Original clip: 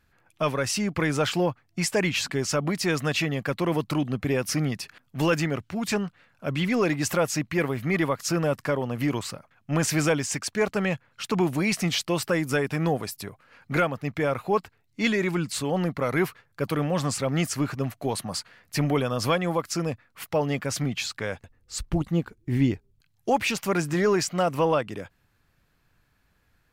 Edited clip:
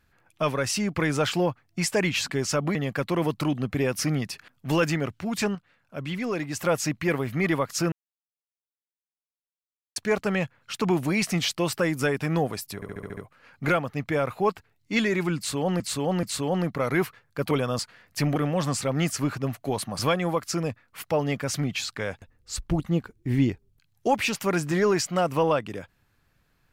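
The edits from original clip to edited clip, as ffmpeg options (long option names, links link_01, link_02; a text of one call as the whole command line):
ffmpeg -i in.wav -filter_complex "[0:a]asplit=18[link_01][link_02][link_03][link_04][link_05][link_06][link_07][link_08][link_09][link_10][link_11][link_12][link_13][link_14][link_15][link_16][link_17][link_18];[link_01]atrim=end=2.752[link_19];[link_02]atrim=start=3.248:end=6.052[link_20];[link_03]atrim=start=6.048:end=7.152,asetpts=PTS-STARTPTS,volume=-5.5dB[link_21];[link_04]atrim=start=7.148:end=8.42,asetpts=PTS-STARTPTS,afade=type=out:start_time=1.268:duration=0.004:curve=hsin[link_22];[link_05]atrim=start=8.42:end=10.46,asetpts=PTS-STARTPTS,volume=0[link_23];[link_06]atrim=start=10.46:end=13.322,asetpts=PTS-STARTPTS,afade=type=in:duration=0.004:curve=hsin[link_24];[link_07]atrim=start=13.248:end=13.322[link_25];[link_08]atrim=start=13.248:end=13.322[link_26];[link_09]atrim=start=13.248:end=13.322[link_27];[link_10]atrim=start=13.248:end=13.322[link_28];[link_11]atrim=start=13.248:end=13.322[link_29];[link_12]atrim=start=13.248:end=15.882[link_30];[link_13]atrim=start=15.448:end=15.882[link_31];[link_14]atrim=start=15.448:end=16.732[link_32];[link_15]atrim=start=18.928:end=19.212[link_33];[link_16]atrim=start=18.358:end=18.932[link_34];[link_17]atrim=start=16.728:end=18.362[link_35];[link_18]atrim=start=19.208[link_36];[link_19][link_20]acrossfade=duration=0.004:curve1=hsin:curve2=hsin[link_37];[link_37][link_21]acrossfade=duration=0.004:curve1=hsin:curve2=hsin[link_38];[link_22][link_23][link_24]concat=n=3:v=0:a=1[link_39];[link_38][link_39]acrossfade=duration=0.004:curve1=hsin:curve2=hsin[link_40];[link_40][link_25]acrossfade=duration=0.004:curve1=hsin:curve2=hsin[link_41];[link_41][link_26]acrossfade=duration=0.004:curve1=hsin:curve2=hsin[link_42];[link_42][link_27]acrossfade=duration=0.004:curve1=hsin:curve2=hsin[link_43];[link_43][link_28]acrossfade=duration=0.004:curve1=hsin:curve2=hsin[link_44];[link_44][link_29]acrossfade=duration=0.004:curve1=hsin:curve2=hsin[link_45];[link_45][link_30]acrossfade=duration=0.004:curve1=hsin:curve2=hsin[link_46];[link_46][link_31]acrossfade=duration=0.004:curve1=hsin:curve2=hsin[link_47];[link_47][link_32]acrossfade=duration=0.004:curve1=hsin:curve2=hsin[link_48];[link_48][link_33]acrossfade=duration=0.004:curve1=hsin:curve2=hsin[link_49];[link_49][link_34]acrossfade=duration=0.004:curve1=hsin:curve2=hsin[link_50];[link_50][link_35]acrossfade=duration=0.004:curve1=hsin:curve2=hsin[link_51];[link_51][link_36]acrossfade=duration=0.004:curve1=hsin:curve2=hsin" out.wav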